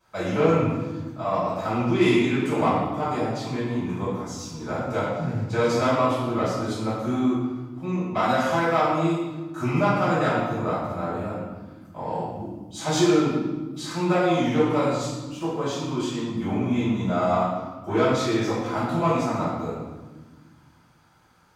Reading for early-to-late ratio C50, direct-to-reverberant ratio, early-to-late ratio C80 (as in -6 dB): -1.0 dB, -13.5 dB, 2.0 dB